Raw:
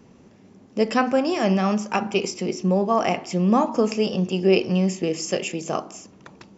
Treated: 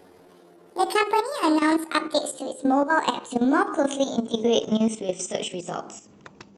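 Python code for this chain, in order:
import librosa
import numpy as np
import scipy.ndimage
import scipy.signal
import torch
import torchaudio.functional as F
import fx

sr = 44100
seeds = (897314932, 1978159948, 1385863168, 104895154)

y = fx.pitch_glide(x, sr, semitones=10.5, runs='ending unshifted')
y = fx.level_steps(y, sr, step_db=11)
y = y * 10.0 ** (3.0 / 20.0)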